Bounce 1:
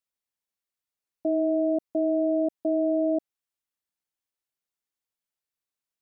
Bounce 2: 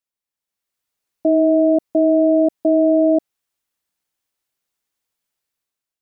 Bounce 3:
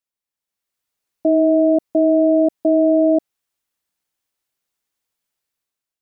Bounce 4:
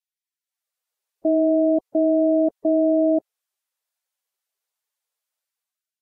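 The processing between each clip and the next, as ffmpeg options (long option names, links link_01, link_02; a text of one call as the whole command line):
ffmpeg -i in.wav -af "dynaudnorm=framelen=170:gausssize=7:maxgain=10dB" out.wav
ffmpeg -i in.wav -af anull out.wav
ffmpeg -i in.wav -af "volume=-4dB" -ar 48000 -c:a libvorbis -b:a 48k out.ogg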